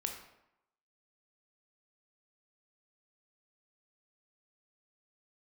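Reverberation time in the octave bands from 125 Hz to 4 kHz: 0.75, 0.80, 0.80, 0.90, 0.75, 0.55 seconds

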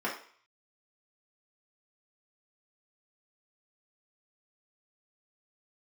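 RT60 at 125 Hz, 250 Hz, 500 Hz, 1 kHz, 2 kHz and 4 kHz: 0.40, 0.40, 0.45, 0.55, 0.55, 0.55 seconds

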